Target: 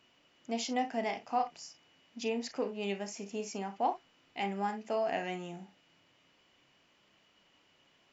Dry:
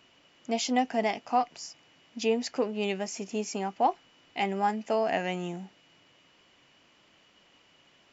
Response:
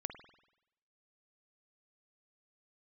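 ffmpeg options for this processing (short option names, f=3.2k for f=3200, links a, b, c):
-filter_complex "[1:a]atrim=start_sample=2205,afade=t=out:st=0.15:d=0.01,atrim=end_sample=7056,asetrate=70560,aresample=44100[a];[0:a][a]afir=irnorm=-1:irlink=0"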